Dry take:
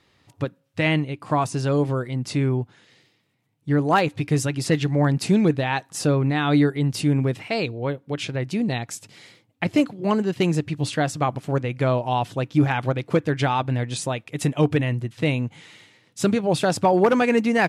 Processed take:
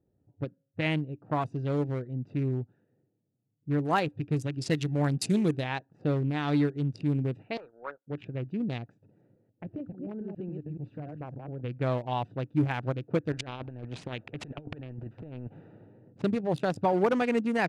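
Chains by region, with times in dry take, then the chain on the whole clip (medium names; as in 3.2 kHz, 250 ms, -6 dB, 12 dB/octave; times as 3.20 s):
4.54–5.64 s: treble shelf 4.1 kHz +10.5 dB + de-hum 381 Hz, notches 34
7.57–8.07 s: high-pass 1.2 kHz + waveshaping leveller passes 2 + resonant high shelf 1.9 kHz -10 dB, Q 3
8.93–11.61 s: chunks repeated in reverse 142 ms, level -4.5 dB + compression 2.5:1, threshold -29 dBFS
13.32–16.22 s: bass shelf 180 Hz +6.5 dB + compressor with a negative ratio -23 dBFS, ratio -0.5 + spectrum-flattening compressor 2:1
whole clip: local Wiener filter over 41 samples; level-controlled noise filter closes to 940 Hz, open at -17.5 dBFS; trim -7 dB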